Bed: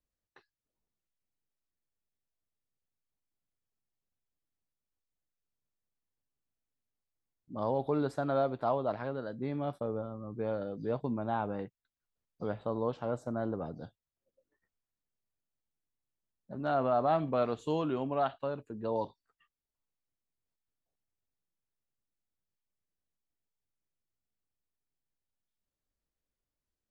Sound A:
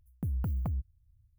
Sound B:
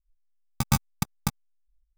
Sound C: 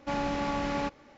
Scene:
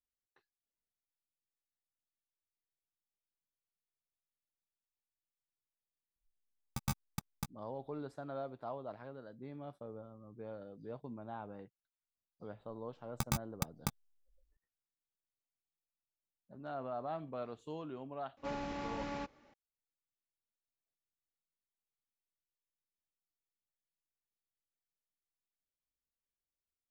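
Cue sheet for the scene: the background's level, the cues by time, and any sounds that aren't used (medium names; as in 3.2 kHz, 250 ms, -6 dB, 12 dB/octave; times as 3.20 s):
bed -12.5 dB
6.16 s: add B -13.5 dB
12.60 s: add B -3 dB + compression 4:1, threshold -27 dBFS
18.37 s: add C -10.5 dB
not used: A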